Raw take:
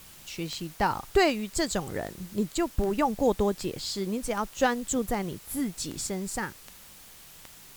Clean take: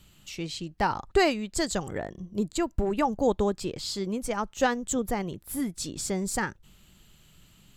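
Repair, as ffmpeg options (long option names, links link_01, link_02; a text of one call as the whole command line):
ffmpeg -i in.wav -af "adeclick=threshold=4,afwtdn=0.0032,asetnsamples=nb_out_samples=441:pad=0,asendcmd='6.07 volume volume 3.5dB',volume=0dB" out.wav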